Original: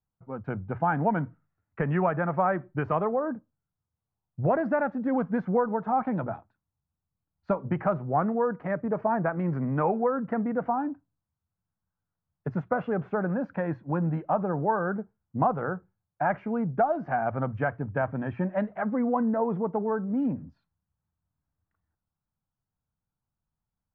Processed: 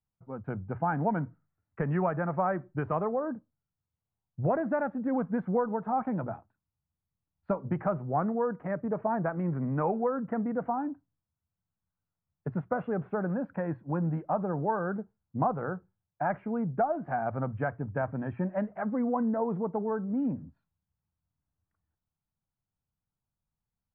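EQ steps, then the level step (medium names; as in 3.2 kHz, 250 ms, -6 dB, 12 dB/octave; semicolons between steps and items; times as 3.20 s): distance through air 430 m; -2.0 dB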